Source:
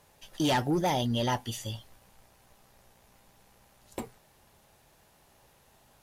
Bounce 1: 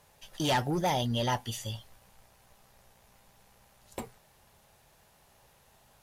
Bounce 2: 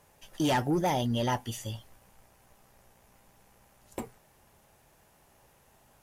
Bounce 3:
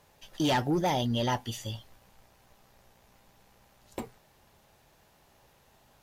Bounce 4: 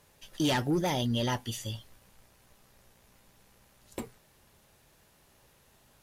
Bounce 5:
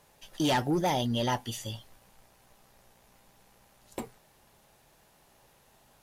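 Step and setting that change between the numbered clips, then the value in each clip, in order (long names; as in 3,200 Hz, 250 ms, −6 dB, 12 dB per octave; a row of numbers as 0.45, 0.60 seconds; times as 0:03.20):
parametric band, centre frequency: 300, 4,000, 10,000, 780, 78 Hertz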